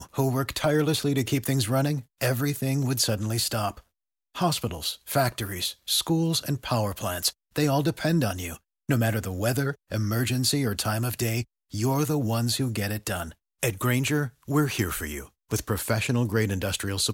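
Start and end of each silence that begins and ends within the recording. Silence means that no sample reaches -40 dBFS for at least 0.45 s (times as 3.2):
3.79–4.35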